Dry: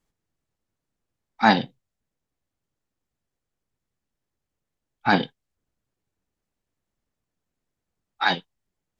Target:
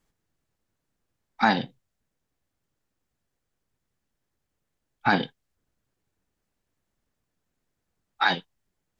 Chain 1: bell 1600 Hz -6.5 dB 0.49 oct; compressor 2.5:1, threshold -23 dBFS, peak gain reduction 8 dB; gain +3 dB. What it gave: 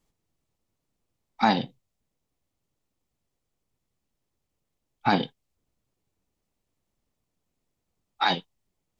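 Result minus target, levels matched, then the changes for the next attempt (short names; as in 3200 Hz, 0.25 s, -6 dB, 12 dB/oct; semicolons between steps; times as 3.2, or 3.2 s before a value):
2000 Hz band -4.5 dB
change: bell 1600 Hz +2 dB 0.49 oct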